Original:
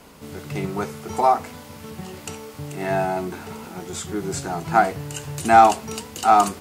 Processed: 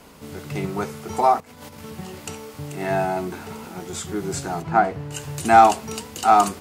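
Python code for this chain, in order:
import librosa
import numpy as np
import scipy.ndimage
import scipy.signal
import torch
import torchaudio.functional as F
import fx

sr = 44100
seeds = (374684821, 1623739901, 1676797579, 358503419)

y = fx.over_compress(x, sr, threshold_db=-42.0, ratio=-0.5, at=(1.4, 1.82))
y = fx.lowpass(y, sr, hz=1800.0, slope=6, at=(4.61, 5.11), fade=0.02)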